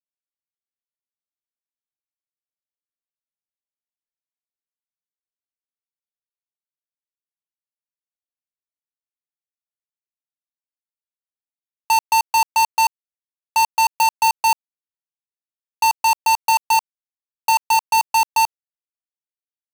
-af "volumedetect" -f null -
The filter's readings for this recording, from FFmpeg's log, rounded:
mean_volume: -24.6 dB
max_volume: -14.1 dB